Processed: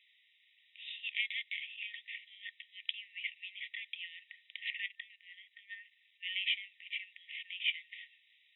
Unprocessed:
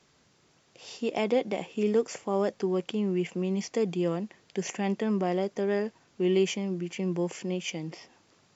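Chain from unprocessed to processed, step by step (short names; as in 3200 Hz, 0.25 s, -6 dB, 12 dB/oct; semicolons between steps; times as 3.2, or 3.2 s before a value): 4.86–6.23 level quantiser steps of 13 dB; FFT band-pass 1800–3900 Hz; gain +4 dB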